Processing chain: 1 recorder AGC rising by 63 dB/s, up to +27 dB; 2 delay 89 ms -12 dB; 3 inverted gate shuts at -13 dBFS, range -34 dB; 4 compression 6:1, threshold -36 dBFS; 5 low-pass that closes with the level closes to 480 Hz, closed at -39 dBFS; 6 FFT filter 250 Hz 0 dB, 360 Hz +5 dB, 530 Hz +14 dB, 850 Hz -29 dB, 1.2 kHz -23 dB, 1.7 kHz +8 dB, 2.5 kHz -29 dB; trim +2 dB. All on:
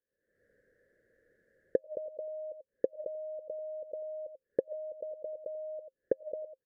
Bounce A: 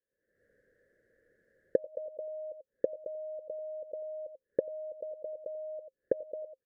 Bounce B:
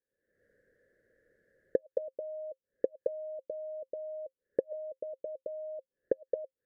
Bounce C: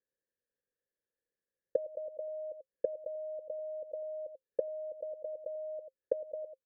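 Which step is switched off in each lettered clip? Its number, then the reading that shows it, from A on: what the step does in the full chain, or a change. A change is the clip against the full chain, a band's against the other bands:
3, momentary loudness spread change +2 LU; 2, momentary loudness spread change +1 LU; 1, crest factor change -2.0 dB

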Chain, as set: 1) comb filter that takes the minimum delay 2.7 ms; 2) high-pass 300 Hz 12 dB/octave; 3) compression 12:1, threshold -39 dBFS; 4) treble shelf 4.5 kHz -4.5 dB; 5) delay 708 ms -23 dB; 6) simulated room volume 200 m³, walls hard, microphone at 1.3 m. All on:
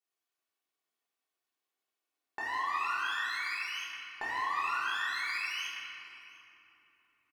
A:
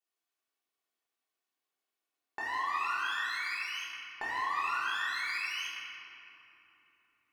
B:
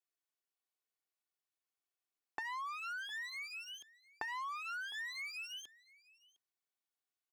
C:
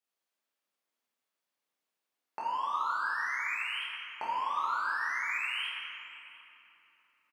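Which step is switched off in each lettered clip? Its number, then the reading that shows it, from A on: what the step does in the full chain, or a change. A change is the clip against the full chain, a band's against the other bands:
5, momentary loudness spread change -2 LU; 6, echo-to-direct 8.5 dB to -23.0 dB; 1, 8 kHz band -6.5 dB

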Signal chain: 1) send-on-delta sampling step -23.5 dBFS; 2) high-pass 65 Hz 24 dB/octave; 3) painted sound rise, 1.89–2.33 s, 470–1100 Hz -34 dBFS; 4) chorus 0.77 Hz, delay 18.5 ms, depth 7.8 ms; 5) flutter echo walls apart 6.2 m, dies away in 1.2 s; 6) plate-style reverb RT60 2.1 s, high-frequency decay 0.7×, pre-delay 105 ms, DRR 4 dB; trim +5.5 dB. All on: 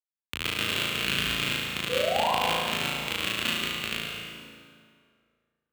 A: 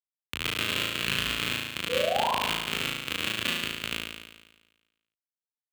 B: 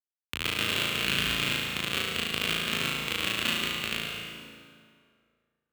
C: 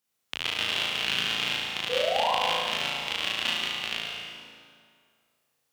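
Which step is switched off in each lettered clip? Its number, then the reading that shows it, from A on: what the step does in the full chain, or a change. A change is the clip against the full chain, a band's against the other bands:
6, echo-to-direct 5.0 dB to 3.0 dB; 3, 500 Hz band -7.5 dB; 1, 125 Hz band -8.5 dB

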